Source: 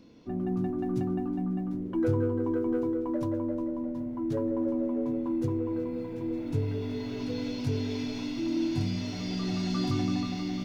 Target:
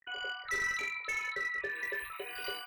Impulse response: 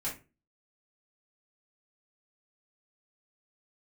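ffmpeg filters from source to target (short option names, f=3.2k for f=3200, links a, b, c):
-filter_complex "[0:a]lowshelf=f=360:t=q:w=3:g=-11.5,afftfilt=real='re*gte(hypot(re,im),0.0178)':imag='im*gte(hypot(re,im),0.0178)':win_size=1024:overlap=0.75,asplit=2[a][b];[b]adelay=110.8,volume=-10dB,highshelf=f=4k:g=-2.49[c];[a][c]amix=inputs=2:normalize=0,aresample=16000,volume=28.5dB,asoftclip=hard,volume=-28.5dB,aresample=44100,acompressor=mode=upward:threshold=-53dB:ratio=2.5,asetrate=175959,aresample=44100,tiltshelf=f=760:g=5.5,asplit=2[d][e];[e]adelay=21,volume=-6dB[f];[d][f]amix=inputs=2:normalize=0,volume=1dB"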